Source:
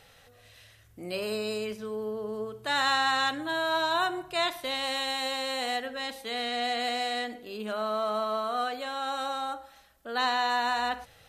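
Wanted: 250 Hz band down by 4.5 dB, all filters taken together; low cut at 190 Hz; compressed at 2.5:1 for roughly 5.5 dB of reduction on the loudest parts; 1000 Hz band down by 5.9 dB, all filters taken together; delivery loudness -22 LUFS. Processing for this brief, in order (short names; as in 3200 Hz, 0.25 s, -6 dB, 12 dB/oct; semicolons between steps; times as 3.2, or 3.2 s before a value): HPF 190 Hz; bell 250 Hz -3.5 dB; bell 1000 Hz -8 dB; compressor 2.5:1, threshold -33 dBFS; gain +13.5 dB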